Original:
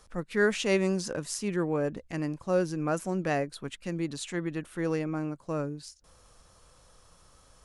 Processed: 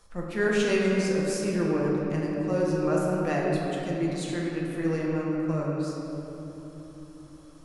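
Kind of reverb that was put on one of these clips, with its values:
rectangular room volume 220 cubic metres, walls hard, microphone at 0.77 metres
level −3 dB

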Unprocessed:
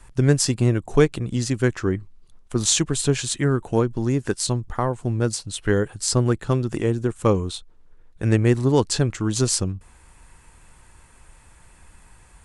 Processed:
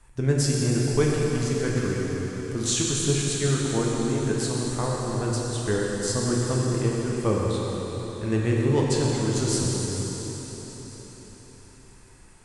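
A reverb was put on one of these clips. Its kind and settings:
dense smooth reverb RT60 4.8 s, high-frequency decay 1×, DRR −4 dB
level −8 dB

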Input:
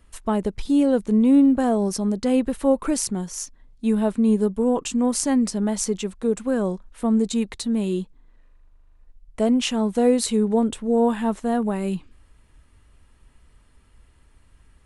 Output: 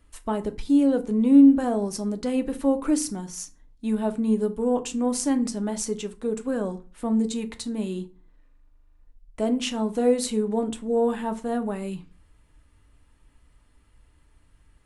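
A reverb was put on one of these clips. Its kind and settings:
feedback delay network reverb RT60 0.35 s, low-frequency decay 1.35×, high-frequency decay 0.7×, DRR 7.5 dB
level −4.5 dB

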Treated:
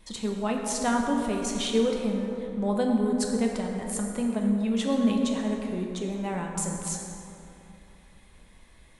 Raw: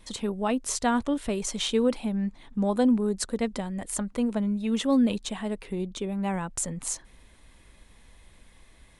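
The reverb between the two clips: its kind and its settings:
dense smooth reverb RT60 3 s, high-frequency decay 0.45×, DRR 0.5 dB
level −2.5 dB

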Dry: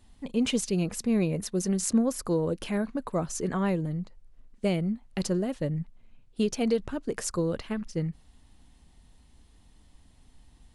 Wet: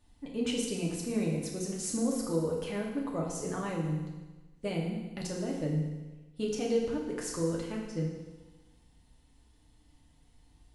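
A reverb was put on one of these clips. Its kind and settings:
feedback delay network reverb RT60 1.2 s, low-frequency decay 1×, high-frequency decay 1×, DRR −2.5 dB
level −8.5 dB

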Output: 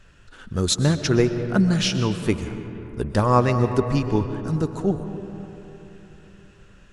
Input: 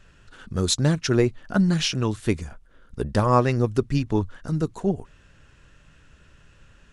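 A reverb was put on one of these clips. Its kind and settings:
comb and all-pass reverb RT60 3.5 s, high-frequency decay 0.4×, pre-delay 85 ms, DRR 8.5 dB
level +1 dB

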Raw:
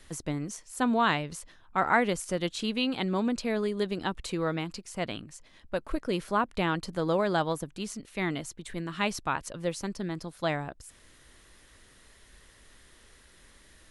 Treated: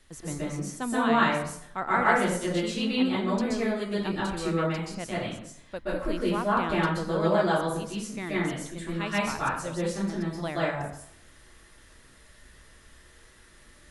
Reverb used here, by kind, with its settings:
dense smooth reverb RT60 0.67 s, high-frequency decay 0.6×, pre-delay 115 ms, DRR −8 dB
level −6 dB

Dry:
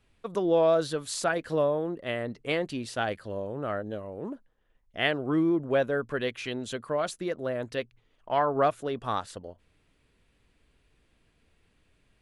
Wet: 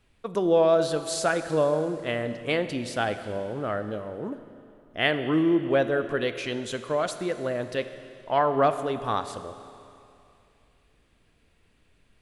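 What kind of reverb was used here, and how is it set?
four-comb reverb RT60 2.6 s, combs from 26 ms, DRR 10 dB
level +2.5 dB

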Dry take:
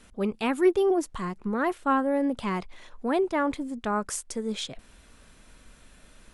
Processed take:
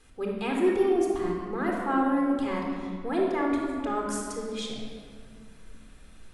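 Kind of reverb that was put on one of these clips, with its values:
rectangular room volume 3,600 cubic metres, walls mixed, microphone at 3.9 metres
level −7 dB

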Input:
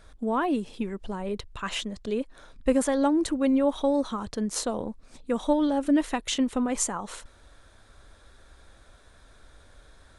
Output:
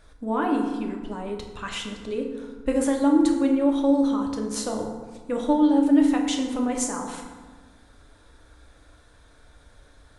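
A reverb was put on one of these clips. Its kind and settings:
feedback delay network reverb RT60 1.4 s, low-frequency decay 1.35×, high-frequency decay 0.55×, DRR 1 dB
level −2 dB

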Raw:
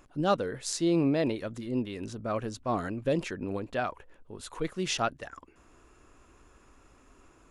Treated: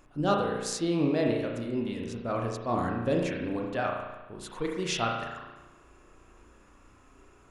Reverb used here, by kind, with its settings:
spring reverb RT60 1.1 s, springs 34 ms, chirp 65 ms, DRR 0 dB
level −1 dB

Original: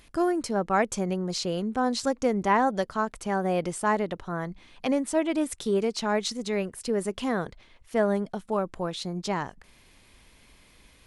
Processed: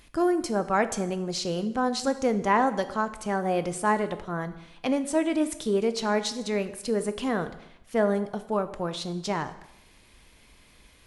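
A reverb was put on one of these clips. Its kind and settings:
dense smooth reverb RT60 0.87 s, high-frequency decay 0.9×, DRR 10 dB

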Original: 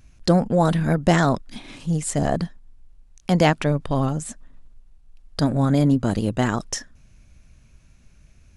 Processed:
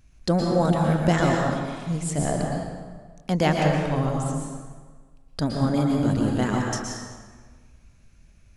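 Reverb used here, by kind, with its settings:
dense smooth reverb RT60 1.5 s, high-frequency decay 0.7×, pre-delay 105 ms, DRR −0.5 dB
level −5 dB

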